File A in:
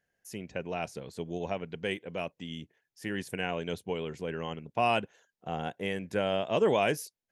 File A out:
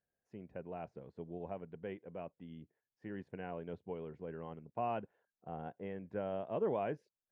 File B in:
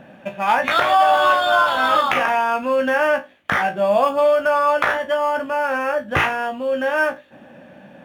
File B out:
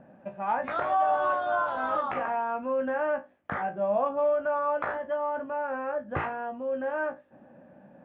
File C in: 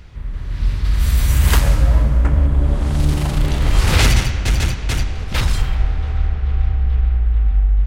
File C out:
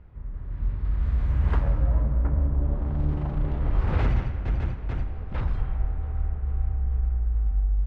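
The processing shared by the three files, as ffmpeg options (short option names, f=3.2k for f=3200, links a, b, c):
-af "lowpass=1.2k,volume=-9dB"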